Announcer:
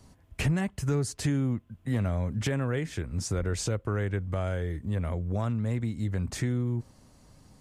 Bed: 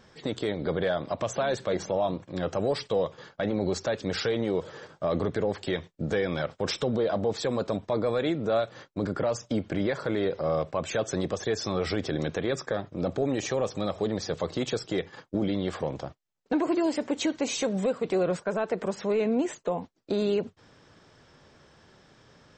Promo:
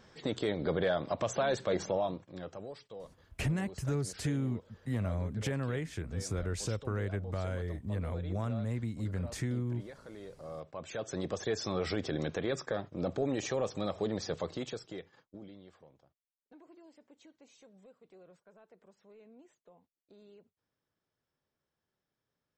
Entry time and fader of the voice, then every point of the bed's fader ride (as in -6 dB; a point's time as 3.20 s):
3.00 s, -5.5 dB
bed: 1.89 s -3 dB
2.81 s -20.5 dB
10.27 s -20.5 dB
11.37 s -5 dB
14.36 s -5 dB
16.04 s -31.5 dB